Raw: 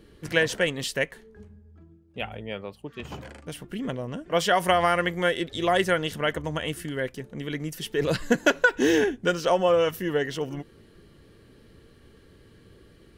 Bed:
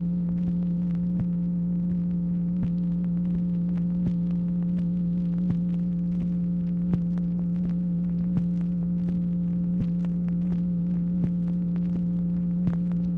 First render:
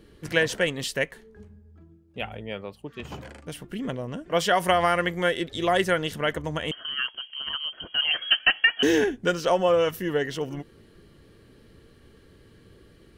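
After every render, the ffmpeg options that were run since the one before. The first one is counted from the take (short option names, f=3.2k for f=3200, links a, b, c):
-filter_complex "[0:a]asettb=1/sr,asplit=3[a][b][c];[a]atrim=end=6.714[d];[b]atrim=start=6.71:end=8.83,asetpts=PTS-STARTPTS,afade=t=in:d=0.004:c=qsin,afade=t=out:st=2.116:d=0.004:c=qsin,lowpass=f=2.8k:t=q:w=0.5098,lowpass=f=2.8k:t=q:w=0.6013,lowpass=f=2.8k:t=q:w=0.9,lowpass=f=2.8k:t=q:w=2.563,afreqshift=-3300[e];[c]atrim=start=8.826[f];[d][e]acrossfade=d=0.004:c1=hsin:c2=qsin[g];[g][f]acrossfade=d=0.004:c1=qsin:c2=hsin"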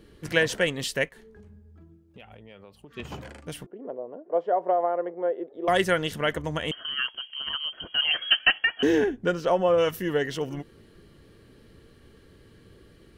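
-filter_complex "[0:a]asplit=3[a][b][c];[a]afade=t=out:st=1.08:d=0.02[d];[b]acompressor=threshold=-44dB:ratio=6:attack=3.2:release=140:knee=1:detection=peak,afade=t=in:st=1.08:d=0.02,afade=t=out:st=2.9:d=0.02[e];[c]afade=t=in:st=2.9:d=0.02[f];[d][e][f]amix=inputs=3:normalize=0,asettb=1/sr,asplit=3[g][h][i];[g]atrim=end=3.664[j];[h]atrim=start=3.66:end=5.68,asetpts=PTS-STARTPTS,afade=t=in:d=0.004:c=qsin,afade=t=out:st=2.016:d=0.004:c=qsin,asuperpass=centerf=540:order=4:qfactor=1.2[k];[i]atrim=start=5.676[l];[j][k]acrossfade=d=0.004:c1=hsin:c2=qsin[m];[m][l]acrossfade=d=0.004:c1=qsin:c2=hsin,asettb=1/sr,asplit=3[n][o][p];[n]atrim=end=8.584[q];[o]atrim=start=8.58:end=9.78,asetpts=PTS-STARTPTS,afade=t=in:d=0.004:c=qsin,afade=t=out:st=1.196:d=0.004:c=qsin,highshelf=f=2.4k:g=-10.5[r];[p]atrim=start=9.776[s];[q][r]acrossfade=d=0.004:c1=hsin:c2=qsin[t];[t][s]acrossfade=d=0.004:c1=qsin:c2=hsin"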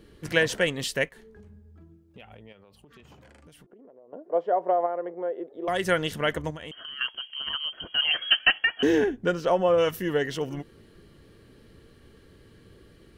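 -filter_complex "[0:a]asettb=1/sr,asplit=3[a][b][c];[a]atrim=end=2.524[d];[b]atrim=start=2.52:end=4.13,asetpts=PTS-STARTPTS,afade=t=in:d=0.004:c=qsin,afade=t=out:st=1.606:d=0.004:c=qsin,acompressor=threshold=-49dB:ratio=8:attack=3.2:release=140:knee=1:detection=peak[e];[c]atrim=start=4.126[f];[d][e]acrossfade=d=0.004:c1=hsin:c2=qsin[g];[g][f]acrossfade=d=0.004:c1=qsin:c2=hsin,asettb=1/sr,asplit=3[h][i][j];[h]atrim=end=4.864[k];[i]atrim=start=4.86:end=5.85,asetpts=PTS-STARTPTS,afade=t=in:d=0.004:c=qsin,afade=t=out:st=0.986:d=0.004:c=qsin,acompressor=threshold=-31dB:ratio=1.5:attack=3.2:release=140:knee=1:detection=peak[l];[j]atrim=start=5.846[m];[k][l]acrossfade=d=0.004:c1=hsin:c2=qsin[n];[n][m]acrossfade=d=0.004:c1=qsin:c2=hsin,asettb=1/sr,asplit=3[o][p][q];[o]atrim=end=6.504[r];[p]atrim=start=6.5:end=7.01,asetpts=PTS-STARTPTS,afade=t=in:d=0.004:c=qsin,afade=t=out:st=0.506:d=0.004:c=qsin,acompressor=threshold=-36dB:ratio=5:attack=3.2:release=140:knee=1:detection=peak[s];[q]atrim=start=7.006[t];[r][s]acrossfade=d=0.004:c1=hsin:c2=qsin[u];[u][t]acrossfade=d=0.004:c1=qsin:c2=hsin"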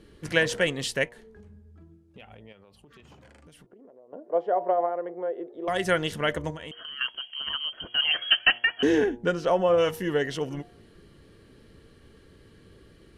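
-af "lowpass=f=12k:w=0.5412,lowpass=f=12k:w=1.3066,bandreject=f=118.5:t=h:w=4,bandreject=f=237:t=h:w=4,bandreject=f=355.5:t=h:w=4,bandreject=f=474:t=h:w=4,bandreject=f=592.5:t=h:w=4,bandreject=f=711:t=h:w=4,bandreject=f=829.5:t=h:w=4,bandreject=f=948:t=h:w=4"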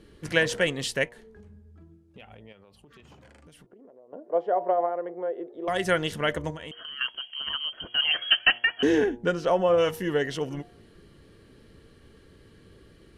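-af anull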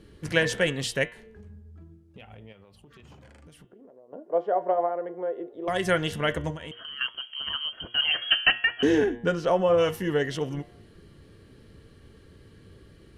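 -af "equalizer=f=98:t=o:w=1.5:g=5,bandreject=f=117.8:t=h:w=4,bandreject=f=235.6:t=h:w=4,bandreject=f=353.4:t=h:w=4,bandreject=f=471.2:t=h:w=4,bandreject=f=589:t=h:w=4,bandreject=f=706.8:t=h:w=4,bandreject=f=824.6:t=h:w=4,bandreject=f=942.4:t=h:w=4,bandreject=f=1.0602k:t=h:w=4,bandreject=f=1.178k:t=h:w=4,bandreject=f=1.2958k:t=h:w=4,bandreject=f=1.4136k:t=h:w=4,bandreject=f=1.5314k:t=h:w=4,bandreject=f=1.6492k:t=h:w=4,bandreject=f=1.767k:t=h:w=4,bandreject=f=1.8848k:t=h:w=4,bandreject=f=2.0026k:t=h:w=4,bandreject=f=2.1204k:t=h:w=4,bandreject=f=2.2382k:t=h:w=4,bandreject=f=2.356k:t=h:w=4,bandreject=f=2.4738k:t=h:w=4,bandreject=f=2.5916k:t=h:w=4,bandreject=f=2.7094k:t=h:w=4,bandreject=f=2.8272k:t=h:w=4,bandreject=f=2.945k:t=h:w=4,bandreject=f=3.0628k:t=h:w=4,bandreject=f=3.1806k:t=h:w=4,bandreject=f=3.2984k:t=h:w=4,bandreject=f=3.4162k:t=h:w=4,bandreject=f=3.534k:t=h:w=4,bandreject=f=3.6518k:t=h:w=4,bandreject=f=3.7696k:t=h:w=4,bandreject=f=3.8874k:t=h:w=4"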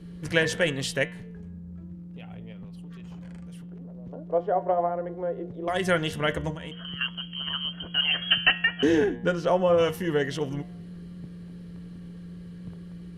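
-filter_complex "[1:a]volume=-16dB[a];[0:a][a]amix=inputs=2:normalize=0"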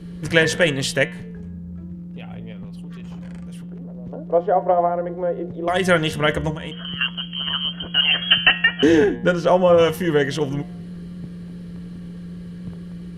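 -af "volume=7dB,alimiter=limit=-1dB:level=0:latency=1"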